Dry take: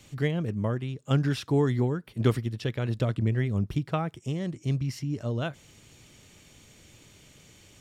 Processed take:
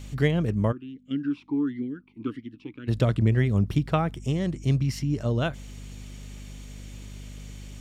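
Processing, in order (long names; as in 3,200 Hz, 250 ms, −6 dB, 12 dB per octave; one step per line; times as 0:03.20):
mains hum 50 Hz, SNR 16 dB
0:00.71–0:02.87: formant filter swept between two vowels i-u 0.93 Hz → 2.3 Hz
level +4.5 dB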